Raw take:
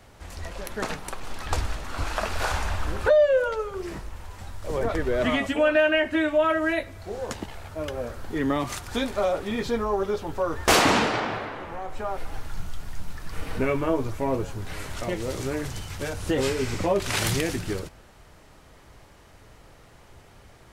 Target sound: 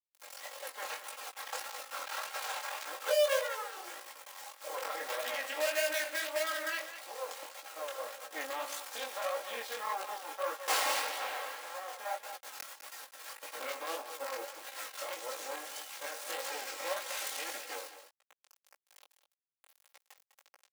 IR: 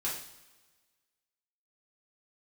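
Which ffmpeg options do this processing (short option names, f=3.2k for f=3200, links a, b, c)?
-af "acrusher=bits=4:dc=4:mix=0:aa=0.000001,highshelf=f=9.6k:g=3.5,alimiter=limit=-18.5dB:level=0:latency=1:release=32,highpass=f=530:w=0.5412,highpass=f=530:w=1.3066,aecho=1:1:3.7:0.89,aecho=1:1:202:0.266,flanger=delay=16:depth=7.5:speed=1.7,volume=-2.5dB"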